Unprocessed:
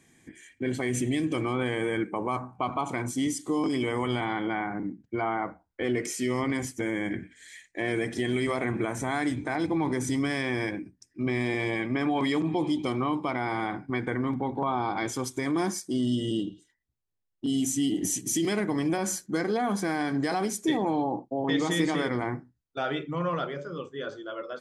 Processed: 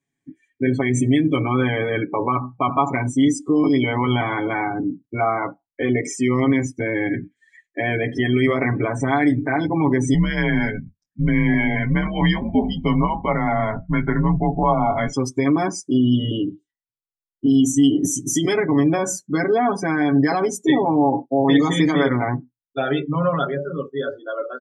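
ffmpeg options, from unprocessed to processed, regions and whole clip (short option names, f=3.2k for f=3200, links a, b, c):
-filter_complex "[0:a]asettb=1/sr,asplit=3[a][b][c];[a]atrim=end=10.144[d];[b]atrim=start=10.14:end=15.13,asetpts=PTS-STARTPTS,afade=t=in:d=0.004:c=qsin,afade=t=out:st=4.986:d=0.004:c=qsin,adynamicsmooth=sensitivity=4.5:basefreq=5.9k,afreqshift=-99,asplit=2[e][f];[f]adelay=23,volume=-11dB[g];[e][g]amix=inputs=2:normalize=0,atrim=end_sample=220059[h];[c]atrim=start=15.126[i];[d][h]acrossfade=d=0.004:c1=hsin:c2=qsin[j];[j][i]acrossfade=d=0.004:c1=qsin:c2=hsin,afftdn=nr=29:nf=-37,highshelf=f=9.4k:g=-9.5,aecho=1:1:7.2:0.9,volume=6.5dB"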